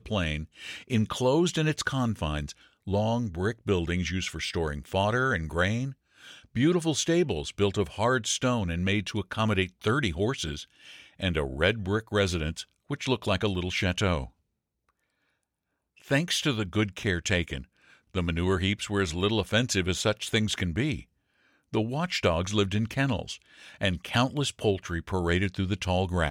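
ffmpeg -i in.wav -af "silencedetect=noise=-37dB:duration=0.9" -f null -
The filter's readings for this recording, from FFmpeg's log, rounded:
silence_start: 14.26
silence_end: 16.08 | silence_duration: 1.82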